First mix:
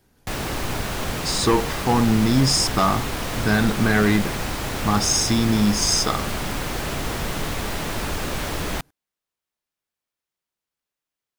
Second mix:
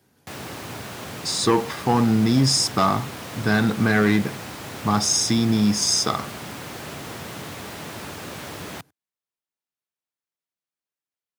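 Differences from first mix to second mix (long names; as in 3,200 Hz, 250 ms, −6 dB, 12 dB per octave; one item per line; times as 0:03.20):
background −7.0 dB
master: add high-pass filter 91 Hz 24 dB per octave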